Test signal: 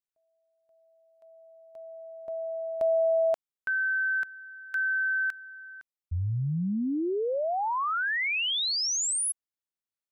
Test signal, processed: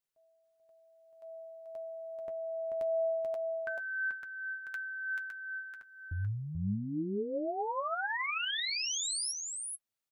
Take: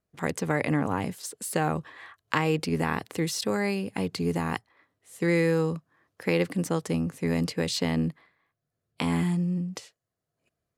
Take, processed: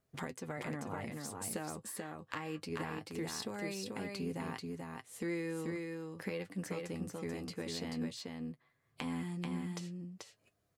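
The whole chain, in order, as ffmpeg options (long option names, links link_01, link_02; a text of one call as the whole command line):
ffmpeg -i in.wav -filter_complex "[0:a]acompressor=threshold=-40dB:ratio=4:attack=4.2:release=676:knee=1:detection=rms,flanger=delay=7.4:depth=2.9:regen=43:speed=0.23:shape=triangular,asplit=2[link_01][link_02];[link_02]aecho=0:1:436:0.668[link_03];[link_01][link_03]amix=inputs=2:normalize=0,volume=7dB" out.wav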